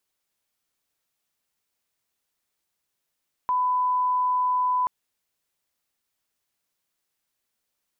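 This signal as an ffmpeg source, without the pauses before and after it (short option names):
-f lavfi -i "sine=f=1000:d=1.38:r=44100,volume=-1.94dB"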